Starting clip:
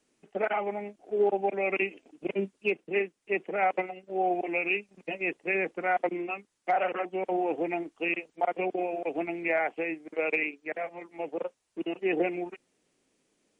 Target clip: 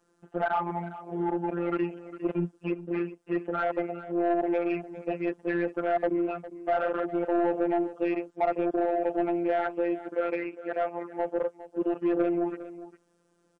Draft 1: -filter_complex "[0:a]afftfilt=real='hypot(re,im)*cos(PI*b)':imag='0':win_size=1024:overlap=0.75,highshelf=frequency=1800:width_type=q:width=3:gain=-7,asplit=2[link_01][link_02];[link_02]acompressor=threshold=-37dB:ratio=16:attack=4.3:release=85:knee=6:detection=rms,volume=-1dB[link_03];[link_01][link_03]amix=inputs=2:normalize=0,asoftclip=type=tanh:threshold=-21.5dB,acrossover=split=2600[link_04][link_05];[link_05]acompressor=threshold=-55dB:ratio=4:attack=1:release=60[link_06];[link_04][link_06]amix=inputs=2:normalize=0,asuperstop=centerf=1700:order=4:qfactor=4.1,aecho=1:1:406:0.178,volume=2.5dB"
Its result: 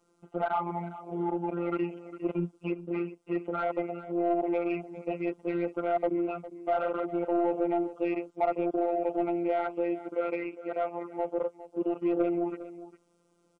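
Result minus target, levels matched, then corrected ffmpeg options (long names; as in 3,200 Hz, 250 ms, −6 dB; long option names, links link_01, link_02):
downward compressor: peak gain reduction +10 dB; 2,000 Hz band −4.0 dB
-filter_complex "[0:a]afftfilt=real='hypot(re,im)*cos(PI*b)':imag='0':win_size=1024:overlap=0.75,highshelf=frequency=1800:width_type=q:width=3:gain=-7,asplit=2[link_01][link_02];[link_02]acompressor=threshold=-26.5dB:ratio=16:attack=4.3:release=85:knee=6:detection=rms,volume=-1dB[link_03];[link_01][link_03]amix=inputs=2:normalize=0,asoftclip=type=tanh:threshold=-21.5dB,acrossover=split=2600[link_04][link_05];[link_05]acompressor=threshold=-55dB:ratio=4:attack=1:release=60[link_06];[link_04][link_06]amix=inputs=2:normalize=0,aecho=1:1:406:0.178,volume=2.5dB"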